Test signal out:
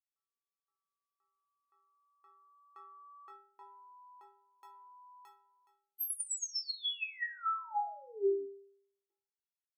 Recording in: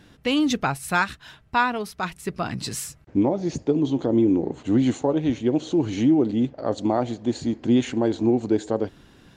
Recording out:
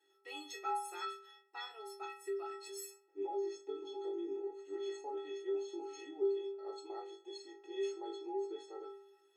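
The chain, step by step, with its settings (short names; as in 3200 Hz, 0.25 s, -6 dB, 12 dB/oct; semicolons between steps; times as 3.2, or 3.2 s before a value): brick-wall FIR high-pass 290 Hz; metallic resonator 390 Hz, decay 0.71 s, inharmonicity 0.03; flutter echo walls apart 3.5 m, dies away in 0.23 s; gain +3 dB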